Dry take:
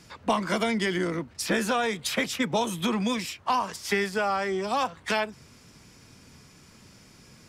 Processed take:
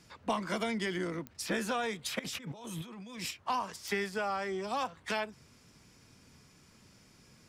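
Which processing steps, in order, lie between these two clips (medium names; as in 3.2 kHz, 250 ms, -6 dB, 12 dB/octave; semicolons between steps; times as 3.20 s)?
2.19–3.31 s: compressor with a negative ratio -36 dBFS, ratio -1; clicks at 1.27/3.88 s, -19 dBFS; trim -7.5 dB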